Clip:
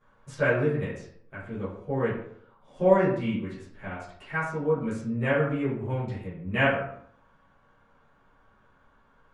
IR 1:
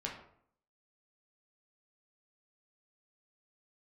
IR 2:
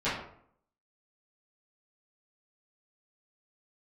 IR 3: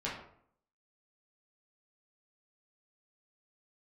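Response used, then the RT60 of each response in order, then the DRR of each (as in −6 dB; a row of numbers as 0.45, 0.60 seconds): 2; 0.65, 0.65, 0.65 seconds; −2.0, −14.5, −7.0 decibels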